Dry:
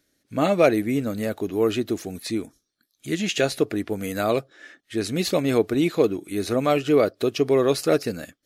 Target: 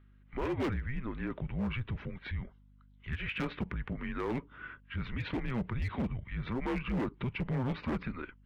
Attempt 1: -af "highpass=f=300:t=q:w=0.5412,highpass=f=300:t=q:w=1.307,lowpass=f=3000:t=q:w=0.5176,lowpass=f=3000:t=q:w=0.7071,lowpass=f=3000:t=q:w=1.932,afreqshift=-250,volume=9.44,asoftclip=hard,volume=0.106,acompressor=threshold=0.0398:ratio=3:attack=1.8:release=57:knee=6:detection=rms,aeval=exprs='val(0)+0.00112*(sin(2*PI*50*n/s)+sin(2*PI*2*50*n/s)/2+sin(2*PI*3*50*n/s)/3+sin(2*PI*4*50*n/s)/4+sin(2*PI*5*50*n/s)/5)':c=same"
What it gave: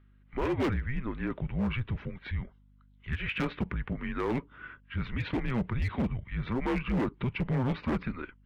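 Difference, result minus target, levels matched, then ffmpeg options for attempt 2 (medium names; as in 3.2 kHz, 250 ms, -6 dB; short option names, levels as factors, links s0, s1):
compression: peak gain reduction -4 dB
-af "highpass=f=300:t=q:w=0.5412,highpass=f=300:t=q:w=1.307,lowpass=f=3000:t=q:w=0.5176,lowpass=f=3000:t=q:w=0.7071,lowpass=f=3000:t=q:w=1.932,afreqshift=-250,volume=9.44,asoftclip=hard,volume=0.106,acompressor=threshold=0.02:ratio=3:attack=1.8:release=57:knee=6:detection=rms,aeval=exprs='val(0)+0.00112*(sin(2*PI*50*n/s)+sin(2*PI*2*50*n/s)/2+sin(2*PI*3*50*n/s)/3+sin(2*PI*4*50*n/s)/4+sin(2*PI*5*50*n/s)/5)':c=same"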